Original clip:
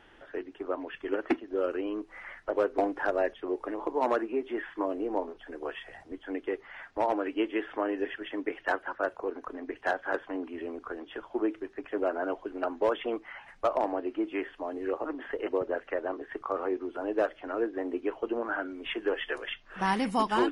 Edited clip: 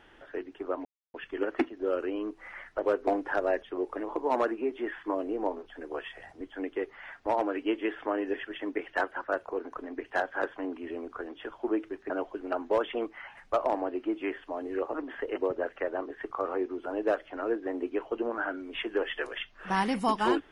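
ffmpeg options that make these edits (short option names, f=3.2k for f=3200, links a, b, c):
-filter_complex "[0:a]asplit=3[a][b][c];[a]atrim=end=0.85,asetpts=PTS-STARTPTS,afade=t=out:st=0.846:d=0.004:c=hsin,apad=pad_dur=0.29[d];[b]atrim=start=0.85:end=11.812,asetpts=PTS-STARTPTS,afade=t=in:d=0.004:c=hsin[e];[c]atrim=start=12.208[f];[d][e]concat=n=2:v=0:a=1[g];[g][f]acrossfade=d=0.004:c1=hsin:c2=hsin"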